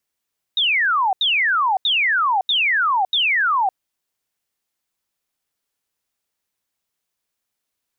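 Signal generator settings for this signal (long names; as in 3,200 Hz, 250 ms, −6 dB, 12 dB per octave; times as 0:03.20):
repeated falling chirps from 3,800 Hz, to 730 Hz, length 0.56 s sine, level −15 dB, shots 5, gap 0.08 s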